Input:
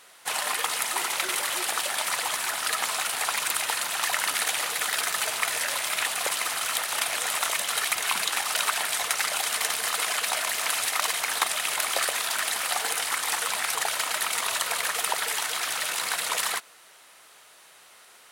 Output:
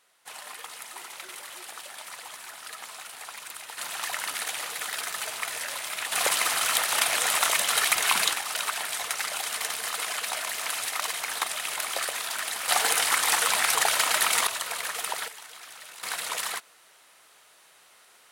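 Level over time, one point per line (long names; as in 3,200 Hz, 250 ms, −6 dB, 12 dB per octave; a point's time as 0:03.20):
−13.5 dB
from 0:03.78 −5.5 dB
from 0:06.12 +3 dB
from 0:08.33 −4 dB
from 0:12.68 +4 dB
from 0:14.47 −4.5 dB
from 0:15.28 −16 dB
from 0:16.03 −4 dB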